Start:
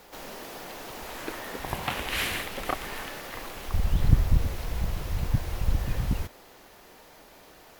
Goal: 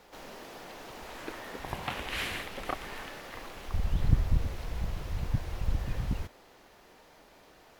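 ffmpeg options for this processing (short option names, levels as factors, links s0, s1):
-af "highshelf=f=9600:g=-10.5,volume=0.596"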